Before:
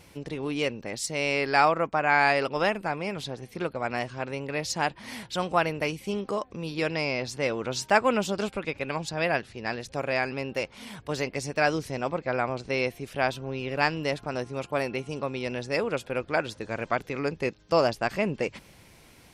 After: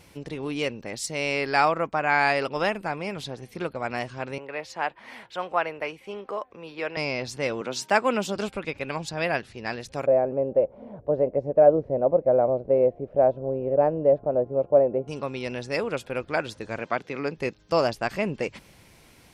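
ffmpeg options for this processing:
ffmpeg -i in.wav -filter_complex "[0:a]asettb=1/sr,asplit=3[link_01][link_02][link_03];[link_01]atrim=end=4.384[link_04];[link_02]atrim=start=4.38:end=6.97,asetpts=PTS-STARTPTS,afade=type=in:duration=0.004:curve=qsin,afade=type=out:start_time=2.586:duration=0.004:curve=qsin,acrossover=split=390 2900:gain=0.178 1 0.178[link_05][link_06][link_07];[link_05][link_06][link_07]amix=inputs=3:normalize=0[link_08];[link_03]atrim=start=6.966[link_09];[link_04][link_08]acrossfade=duration=0.004:curve1=hsin:curve2=qsin[link_10];[link_10][link_09]acrossfade=duration=0.004:curve1=qsin:curve2=hsin,asettb=1/sr,asplit=3[link_11][link_12][link_13];[link_11]atrim=end=7.614[link_14];[link_12]atrim=start=7.61:end=8.36,asetpts=PTS-STARTPTS,afade=type=in:duration=0.004:curve=qsin,afade=type=out:start_time=0.746:duration=0.004:curve=qsin,highpass=frequency=160:width=0.5412,highpass=frequency=160:width=1.3066[link_15];[link_13]atrim=start=8.356[link_16];[link_14][link_15]acrossfade=duration=0.004:curve1=hsin:curve2=qsin[link_17];[link_17][link_16]acrossfade=duration=0.004:curve1=qsin:curve2=hsin,asettb=1/sr,asplit=3[link_18][link_19][link_20];[link_18]atrim=end=10.064[link_21];[link_19]atrim=start=10.06:end=15.08,asetpts=PTS-STARTPTS,afade=type=in:duration=0.004:curve=qsin,afade=type=out:start_time=5.016:duration=0.004:curve=qsin,lowpass=frequency=580:width_type=q:width=4.7[link_22];[link_20]atrim=start=15.076[link_23];[link_21][link_22]acrossfade=duration=0.004:curve1=hsin:curve2=qsin[link_24];[link_24][link_23]acrossfade=duration=0.004:curve1=qsin:curve2=hsin,asettb=1/sr,asplit=3[link_25][link_26][link_27];[link_25]atrim=end=16.794[link_28];[link_26]atrim=start=16.79:end=17.38,asetpts=PTS-STARTPTS,afade=type=in:duration=0.004:curve=qsin,afade=type=out:start_time=0.586:duration=0.004:curve=qsin,highpass=140,lowpass=6000[link_29];[link_27]atrim=start=17.376[link_30];[link_28][link_29]acrossfade=duration=0.004:curve1=hsin:curve2=qsin[link_31];[link_31][link_30]acrossfade=duration=0.004:curve1=qsin:curve2=hsin" out.wav

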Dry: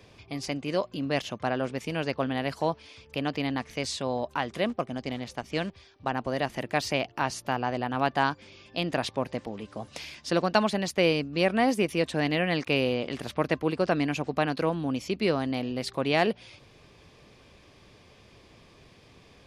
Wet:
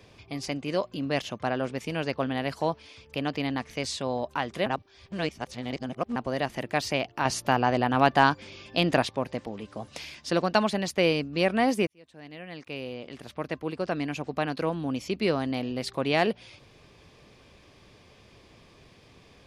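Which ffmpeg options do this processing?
ffmpeg -i in.wav -filter_complex "[0:a]asettb=1/sr,asplit=3[link_01][link_02][link_03];[link_01]atrim=end=7.254[link_04];[link_02]atrim=start=7.25:end=9.03,asetpts=PTS-STARTPTS,afade=type=in:duration=0.004:curve=qsin,afade=type=out:start_time=1.776:duration=0.004:curve=qsin,acontrast=39[link_05];[link_03]atrim=start=9.026[link_06];[link_04][link_05]acrossfade=duration=0.004:curve1=hsin:curve2=qsin[link_07];[link_07][link_06]acrossfade=duration=0.004:curve1=qsin:curve2=hsin,asplit=4[link_08][link_09][link_10][link_11];[link_08]atrim=end=4.662[link_12];[link_09]atrim=start=4.658:end=6.162,asetpts=PTS-STARTPTS,areverse[link_13];[link_10]atrim=start=6.158:end=11.87,asetpts=PTS-STARTPTS,afade=type=out:start_time=5.708:duration=0.004:curve=hsin[link_14];[link_11]atrim=start=11.87,asetpts=PTS-STARTPTS,afade=type=in:duration=3.32[link_15];[link_12][link_13]acrossfade=duration=0.004:curve1=hsin:curve2=hsin[link_16];[link_14][link_15]concat=n=2:v=0:a=1[link_17];[link_16][link_17]acrossfade=duration=0.004:curve1=hsin:curve2=hsin" out.wav

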